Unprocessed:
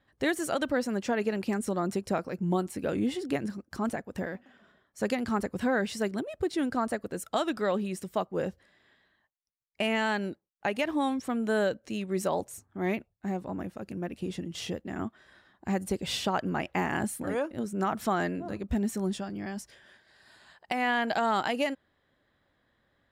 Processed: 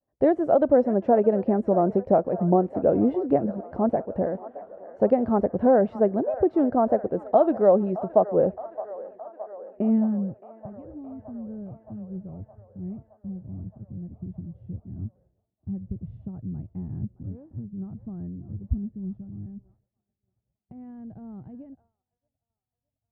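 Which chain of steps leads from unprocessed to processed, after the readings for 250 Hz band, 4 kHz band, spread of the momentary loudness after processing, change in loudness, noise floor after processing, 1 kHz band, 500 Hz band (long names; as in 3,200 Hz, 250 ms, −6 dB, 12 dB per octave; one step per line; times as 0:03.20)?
+5.0 dB, below −25 dB, 20 LU, +8.0 dB, below −85 dBFS, +3.0 dB, +8.5 dB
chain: low-pass filter sweep 650 Hz → 110 Hz, 0:09.43–0:10.42
delay with a band-pass on its return 618 ms, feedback 67%, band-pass 1,100 Hz, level −14 dB
downward expander −58 dBFS
level +5.5 dB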